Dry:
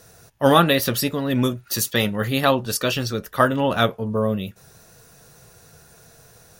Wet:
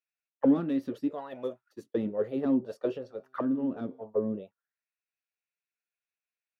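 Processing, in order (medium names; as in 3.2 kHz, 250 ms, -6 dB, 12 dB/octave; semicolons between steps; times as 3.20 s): saturation -11.5 dBFS, distortion -14 dB; 0.60–1.84 s: tilt shelf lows -5 dB, about 1.1 kHz; auto-wah 270–2600 Hz, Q 5.1, down, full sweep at -17.5 dBFS; expander -38 dBFS; 2.98–4.01 s: feedback comb 130 Hz, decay 1.1 s, harmonics all, mix 40%; trim +3 dB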